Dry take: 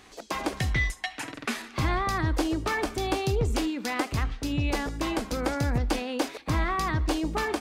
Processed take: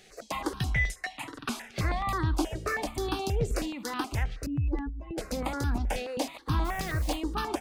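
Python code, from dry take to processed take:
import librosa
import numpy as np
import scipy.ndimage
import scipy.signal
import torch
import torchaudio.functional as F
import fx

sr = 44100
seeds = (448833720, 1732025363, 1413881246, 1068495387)

y = fx.spec_expand(x, sr, power=2.5, at=(4.46, 5.18))
y = fx.dmg_noise_colour(y, sr, seeds[0], colour='pink', level_db=-42.0, at=(6.64, 7.15), fade=0.02)
y = fx.phaser_held(y, sr, hz=9.4, low_hz=280.0, high_hz=2100.0)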